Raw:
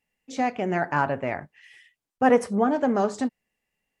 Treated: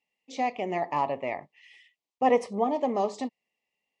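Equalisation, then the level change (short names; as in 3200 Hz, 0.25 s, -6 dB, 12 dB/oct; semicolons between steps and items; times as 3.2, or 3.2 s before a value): HPF 530 Hz 6 dB/oct; Butterworth band-stop 1500 Hz, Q 1.8; LPF 5400 Hz 12 dB/oct; 0.0 dB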